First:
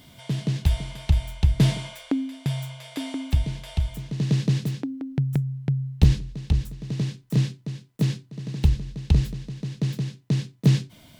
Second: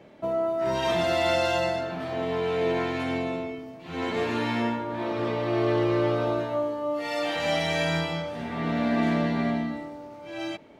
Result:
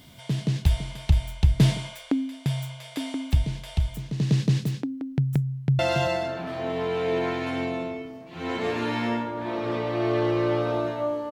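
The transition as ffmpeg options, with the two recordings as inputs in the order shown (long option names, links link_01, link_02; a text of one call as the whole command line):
ffmpeg -i cue0.wav -i cue1.wav -filter_complex "[0:a]apad=whole_dur=11.31,atrim=end=11.31,atrim=end=5.792[link_01];[1:a]atrim=start=1.318:end=6.84[link_02];[link_01][link_02]acrossfade=duration=0.004:curve1=hsin:curve2=hsin,asplit=2[link_03][link_04];[link_04]afade=type=in:start_time=5.4:duration=0.01,afade=type=out:start_time=5.79:duration=0.01,aecho=0:1:280|560:0.501187|0.0501187[link_05];[link_03][link_05]amix=inputs=2:normalize=0" out.wav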